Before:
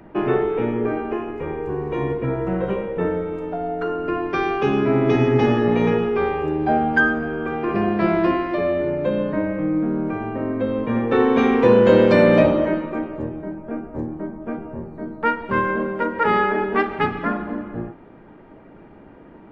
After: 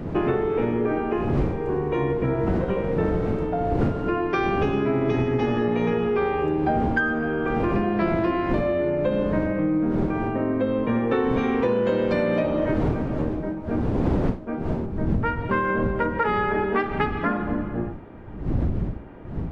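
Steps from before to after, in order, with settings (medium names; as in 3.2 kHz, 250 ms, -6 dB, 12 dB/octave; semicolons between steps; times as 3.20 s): wind noise 290 Hz -24 dBFS, from 14.85 s 150 Hz; compression 10:1, threshold -20 dBFS, peak gain reduction 15.5 dB; trim +1.5 dB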